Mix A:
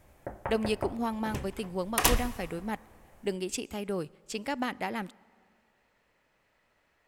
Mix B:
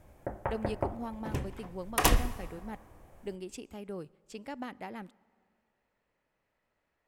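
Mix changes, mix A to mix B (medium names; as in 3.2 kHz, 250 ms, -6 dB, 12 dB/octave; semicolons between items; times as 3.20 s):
speech -10.0 dB; master: add tilt shelf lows +3 dB, about 1.4 kHz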